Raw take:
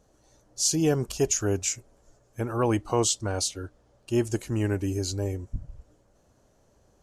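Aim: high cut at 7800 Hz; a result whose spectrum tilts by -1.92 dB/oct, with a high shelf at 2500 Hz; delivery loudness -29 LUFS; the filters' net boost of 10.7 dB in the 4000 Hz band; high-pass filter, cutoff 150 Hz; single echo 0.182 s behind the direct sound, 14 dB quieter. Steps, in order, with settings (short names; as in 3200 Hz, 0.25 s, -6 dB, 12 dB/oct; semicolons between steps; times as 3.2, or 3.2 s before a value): HPF 150 Hz; LPF 7800 Hz; high shelf 2500 Hz +8.5 dB; bell 4000 Hz +6 dB; echo 0.182 s -14 dB; gain -7 dB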